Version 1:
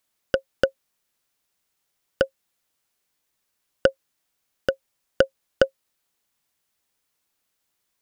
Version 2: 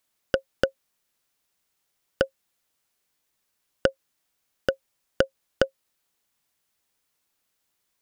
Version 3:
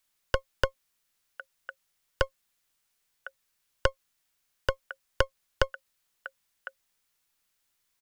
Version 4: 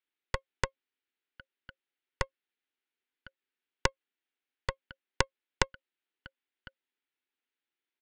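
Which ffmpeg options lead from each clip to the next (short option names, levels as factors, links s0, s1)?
-af "acompressor=threshold=0.141:ratio=4"
-filter_complex "[0:a]acrossover=split=120|1100|1900[s0][s1][s2][s3];[s1]aeval=exprs='max(val(0),0)':c=same[s4];[s2]aecho=1:1:1055:0.531[s5];[s0][s4][s5][s3]amix=inputs=4:normalize=0"
-af "highpass=f=260:w=0.5412,highpass=f=260:w=1.3066,equalizer=f=260:t=q:w=4:g=7,equalizer=f=380:t=q:w=4:g=6,equalizer=f=620:t=q:w=4:g=-8,equalizer=f=1100:t=q:w=4:g=-8,lowpass=f=3400:w=0.5412,lowpass=f=3400:w=1.3066,aeval=exprs='0.335*(cos(1*acos(clip(val(0)/0.335,-1,1)))-cos(1*PI/2))+0.075*(cos(2*acos(clip(val(0)/0.335,-1,1)))-cos(2*PI/2))+0.168*(cos(3*acos(clip(val(0)/0.335,-1,1)))-cos(3*PI/2))+0.0473*(cos(5*acos(clip(val(0)/0.335,-1,1)))-cos(5*PI/2))+0.0188*(cos(6*acos(clip(val(0)/0.335,-1,1)))-cos(6*PI/2))':c=same,volume=1.88"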